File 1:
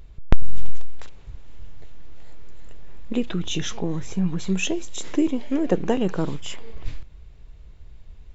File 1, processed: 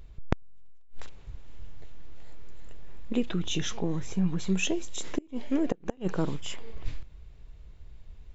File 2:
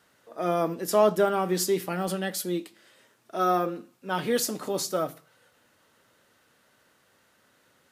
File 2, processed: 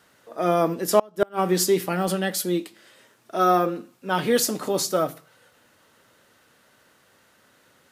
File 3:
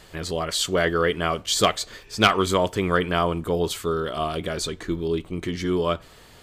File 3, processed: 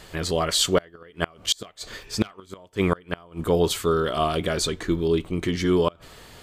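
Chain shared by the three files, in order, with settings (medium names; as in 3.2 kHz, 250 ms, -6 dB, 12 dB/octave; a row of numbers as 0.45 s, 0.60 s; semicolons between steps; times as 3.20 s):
inverted gate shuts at -11 dBFS, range -30 dB; peak normalisation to -6 dBFS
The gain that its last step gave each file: -3.5 dB, +5.0 dB, +3.0 dB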